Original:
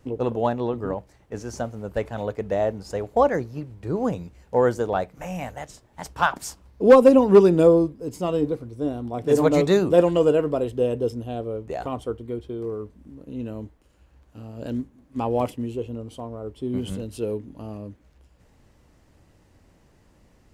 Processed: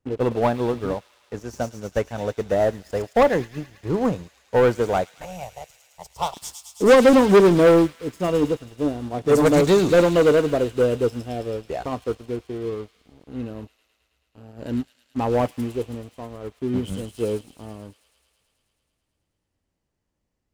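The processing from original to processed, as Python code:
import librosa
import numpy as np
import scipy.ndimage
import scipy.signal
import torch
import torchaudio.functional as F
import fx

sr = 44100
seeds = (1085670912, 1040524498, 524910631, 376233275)

p1 = fx.leveller(x, sr, passes=3)
p2 = fx.fixed_phaser(p1, sr, hz=640.0, stages=4, at=(5.25, 6.35))
p3 = p2 + fx.echo_wet_highpass(p2, sr, ms=108, feedback_pct=80, hz=3100.0, wet_db=-3.5, dry=0)
p4 = fx.upward_expand(p3, sr, threshold_db=-30.0, expansion=1.5)
y = p4 * 10.0 ** (-3.5 / 20.0)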